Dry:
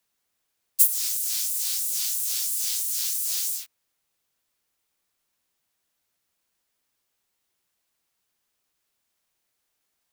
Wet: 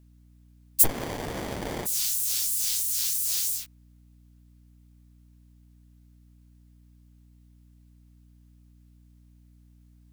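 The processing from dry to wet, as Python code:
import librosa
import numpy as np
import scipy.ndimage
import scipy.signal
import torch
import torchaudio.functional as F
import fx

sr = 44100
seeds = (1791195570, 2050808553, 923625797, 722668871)

y = fx.add_hum(x, sr, base_hz=60, snr_db=24)
y = fx.running_max(y, sr, window=33, at=(0.83, 1.85), fade=0.02)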